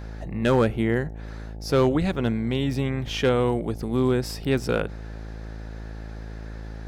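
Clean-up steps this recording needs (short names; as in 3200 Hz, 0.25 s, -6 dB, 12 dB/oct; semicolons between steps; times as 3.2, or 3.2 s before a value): clip repair -12.5 dBFS; de-hum 54.3 Hz, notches 16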